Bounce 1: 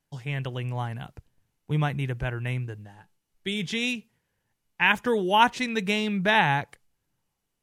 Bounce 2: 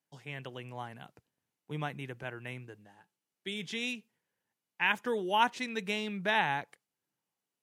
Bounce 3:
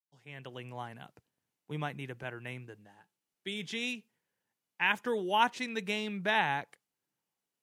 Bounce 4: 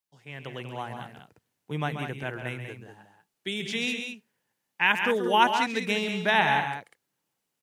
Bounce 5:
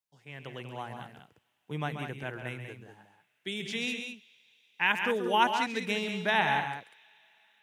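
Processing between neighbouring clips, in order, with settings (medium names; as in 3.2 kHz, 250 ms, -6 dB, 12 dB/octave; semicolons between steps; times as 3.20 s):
high-pass 210 Hz 12 dB/octave; trim -7.5 dB
fade-in on the opening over 0.61 s
loudspeakers at several distances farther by 46 m -9 dB, 66 m -8 dB; trim +6 dB
on a send at -19.5 dB: band-pass filter 3.8 kHz, Q 1.1 + reverberation RT60 5.1 s, pre-delay 33 ms; on the sum: trim -4 dB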